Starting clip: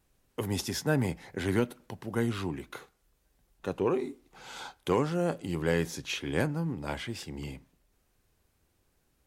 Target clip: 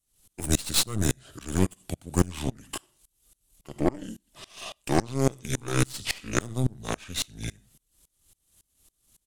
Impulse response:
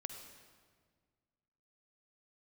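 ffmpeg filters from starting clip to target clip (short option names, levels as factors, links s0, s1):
-filter_complex "[0:a]bass=f=250:g=4,treble=f=4000:g=10,asetrate=34006,aresample=44100,atempo=1.29684,asplit=2[s0][s1];[1:a]atrim=start_sample=2205,atrim=end_sample=4410[s2];[s1][s2]afir=irnorm=-1:irlink=0,volume=1.33[s3];[s0][s3]amix=inputs=2:normalize=0,aexciter=amount=2:drive=2.5:freq=2800,aeval=exprs='0.708*(cos(1*acos(clip(val(0)/0.708,-1,1)))-cos(1*PI/2))+0.1*(cos(8*acos(clip(val(0)/0.708,-1,1)))-cos(8*PI/2))':c=same,aeval=exprs='val(0)*pow(10,-26*if(lt(mod(-3.6*n/s,1),2*abs(-3.6)/1000),1-mod(-3.6*n/s,1)/(2*abs(-3.6)/1000),(mod(-3.6*n/s,1)-2*abs(-3.6)/1000)/(1-2*abs(-3.6)/1000))/20)':c=same"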